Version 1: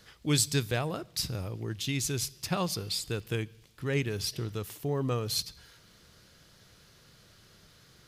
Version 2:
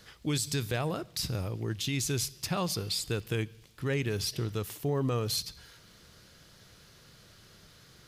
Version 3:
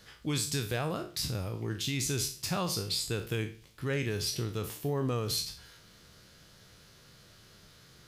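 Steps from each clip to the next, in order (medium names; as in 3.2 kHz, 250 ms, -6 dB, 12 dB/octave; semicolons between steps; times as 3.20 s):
peak limiter -23.5 dBFS, peak gain reduction 9.5 dB; trim +2 dB
spectral sustain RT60 0.38 s; trim -2 dB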